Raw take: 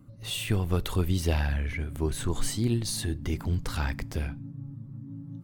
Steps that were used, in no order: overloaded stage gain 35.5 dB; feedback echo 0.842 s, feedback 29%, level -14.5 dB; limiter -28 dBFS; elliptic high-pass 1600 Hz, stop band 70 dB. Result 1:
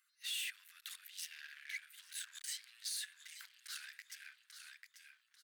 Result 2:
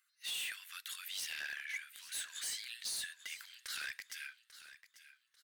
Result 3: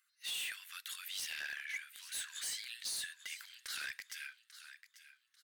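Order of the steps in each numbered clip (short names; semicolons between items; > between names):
feedback echo > limiter > overloaded stage > elliptic high-pass; elliptic high-pass > limiter > overloaded stage > feedback echo; elliptic high-pass > limiter > feedback echo > overloaded stage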